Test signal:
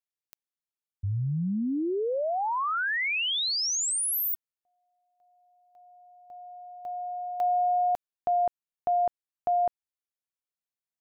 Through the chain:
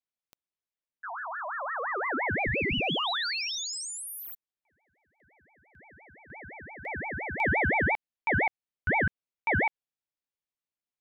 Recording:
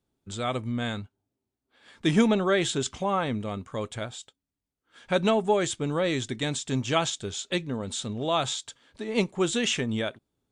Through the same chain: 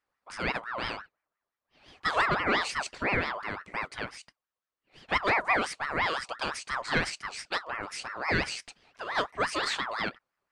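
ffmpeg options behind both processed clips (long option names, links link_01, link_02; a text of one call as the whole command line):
ffmpeg -i in.wav -filter_complex "[0:a]asplit=2[link_01][link_02];[link_02]highpass=frequency=720:poles=1,volume=12dB,asoftclip=type=tanh:threshold=-8dB[link_03];[link_01][link_03]amix=inputs=2:normalize=0,lowpass=frequency=2000:poles=1,volume=-6dB,aeval=exprs='val(0)*sin(2*PI*1200*n/s+1200*0.35/5.8*sin(2*PI*5.8*n/s))':channel_layout=same,volume=-2dB" out.wav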